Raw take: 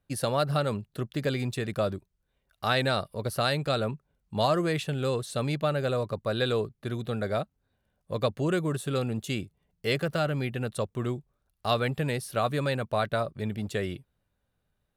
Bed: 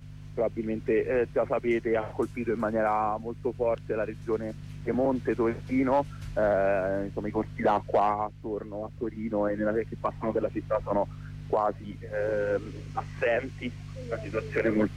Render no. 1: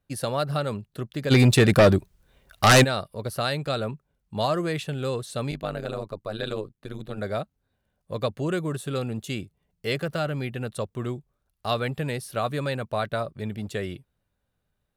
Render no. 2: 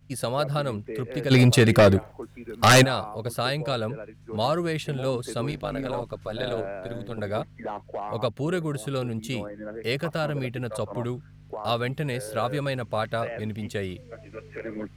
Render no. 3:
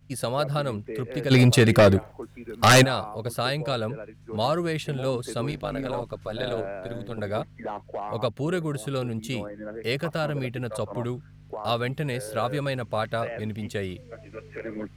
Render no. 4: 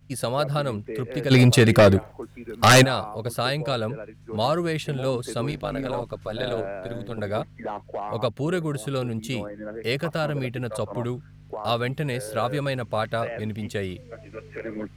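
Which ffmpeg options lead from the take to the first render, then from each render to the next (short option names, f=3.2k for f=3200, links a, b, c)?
-filter_complex "[0:a]asplit=3[a][b][c];[a]afade=t=out:st=1.3:d=0.02[d];[b]aeval=exprs='0.299*sin(PI/2*3.98*val(0)/0.299)':c=same,afade=t=in:st=1.3:d=0.02,afade=t=out:st=2.83:d=0.02[e];[c]afade=t=in:st=2.83:d=0.02[f];[d][e][f]amix=inputs=3:normalize=0,asettb=1/sr,asplit=3[g][h][i];[g]atrim=end=5.514[j];[h]atrim=start=5.51:end=7.18,asetpts=PTS-STARTPTS,afade=t=in:d=0.004:c=qsin,afade=t=out:st=1.666:d=0.004:c=qsin,tremolo=f=100:d=0.947[k];[i]atrim=start=7.176[l];[j][k]acrossfade=d=0.004:c1=hsin:c2=qsin[m];[m][l]acrossfade=d=0.004:c1=qsin:c2=hsin"
-filter_complex "[1:a]volume=-9.5dB[a];[0:a][a]amix=inputs=2:normalize=0"
-af anull
-af "volume=1.5dB"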